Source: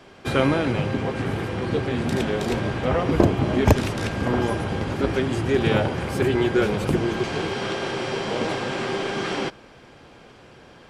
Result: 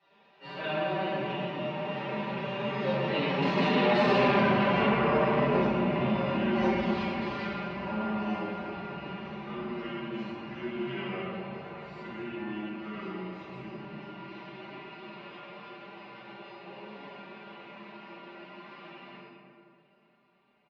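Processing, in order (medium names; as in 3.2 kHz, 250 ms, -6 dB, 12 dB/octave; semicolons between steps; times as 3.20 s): Doppler pass-by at 2.28 s, 48 m/s, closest 6.7 m; comb 5.1 ms, depth 63%; compression 6:1, threshold -30 dBFS, peak gain reduction 9.5 dB; time stretch by phase-locked vocoder 1.9×; cabinet simulation 180–4400 Hz, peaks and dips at 410 Hz -6 dB, 1 kHz +5 dB, 2.6 kHz +6 dB; reverberation RT60 2.2 s, pre-delay 5 ms, DRR -12 dB; transformer saturation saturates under 630 Hz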